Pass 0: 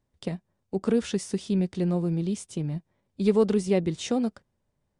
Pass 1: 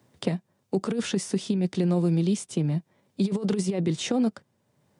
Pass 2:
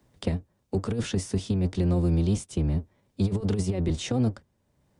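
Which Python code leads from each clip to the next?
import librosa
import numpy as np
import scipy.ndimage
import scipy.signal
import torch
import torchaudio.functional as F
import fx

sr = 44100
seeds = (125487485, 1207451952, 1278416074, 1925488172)

y1 = fx.over_compress(x, sr, threshold_db=-25.0, ratio=-0.5)
y1 = scipy.signal.sosfilt(scipy.signal.butter(4, 110.0, 'highpass', fs=sr, output='sos'), y1)
y1 = fx.band_squash(y1, sr, depth_pct=40)
y1 = F.gain(torch.from_numpy(y1), 2.5).numpy()
y2 = fx.octave_divider(y1, sr, octaves=1, level_db=1.0)
y2 = F.gain(torch.from_numpy(y2), -3.0).numpy()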